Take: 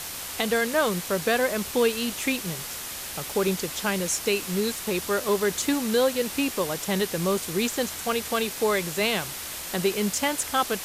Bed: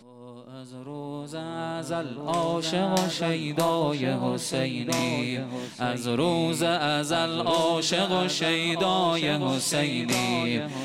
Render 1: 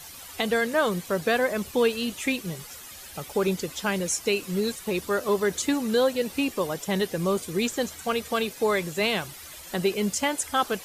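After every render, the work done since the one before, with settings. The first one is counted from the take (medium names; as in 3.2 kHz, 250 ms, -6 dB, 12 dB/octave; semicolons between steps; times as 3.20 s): noise reduction 12 dB, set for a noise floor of -36 dBFS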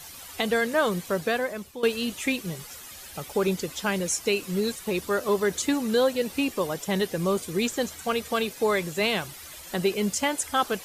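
1.11–1.83 s: fade out linear, to -16 dB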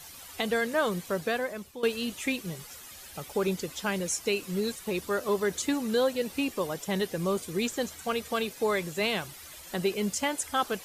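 trim -3.5 dB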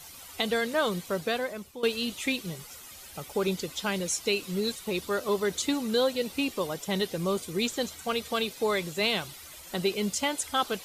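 band-stop 1.7 kHz, Q 15; dynamic bell 3.8 kHz, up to +6 dB, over -49 dBFS, Q 1.9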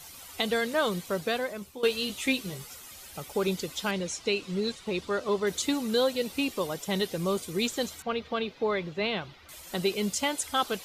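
1.60–2.74 s: doubling 15 ms -7 dB; 3.91–5.47 s: distance through air 75 m; 8.02–9.49 s: distance through air 260 m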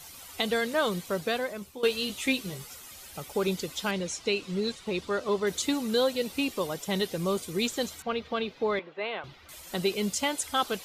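8.79–9.24 s: band-pass 480–2300 Hz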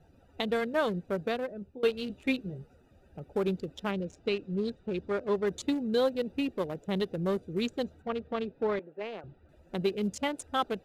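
local Wiener filter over 41 samples; treble shelf 3.4 kHz -10 dB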